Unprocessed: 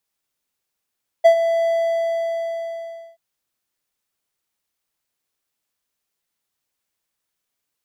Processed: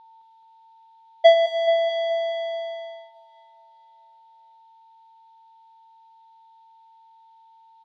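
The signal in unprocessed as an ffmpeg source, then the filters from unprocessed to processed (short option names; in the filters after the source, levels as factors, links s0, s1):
-f lavfi -i "aevalsrc='0.668*(1-4*abs(mod(666*t+0.25,1)-0.5))':d=1.93:s=44100,afade=t=in:d=0.018,afade=t=out:st=0.018:d=0.088:silence=0.299,afade=t=out:st=0.43:d=1.5"
-filter_complex "[0:a]aeval=exprs='val(0)+0.00355*sin(2*PI*900*n/s)':c=same,lowpass=f=3700:t=q:w=5.2,asplit=2[s0][s1];[s1]aecho=0:1:214|428|642|856|1070|1284|1498:0.398|0.223|0.125|0.0699|0.0392|0.0219|0.0123[s2];[s0][s2]amix=inputs=2:normalize=0"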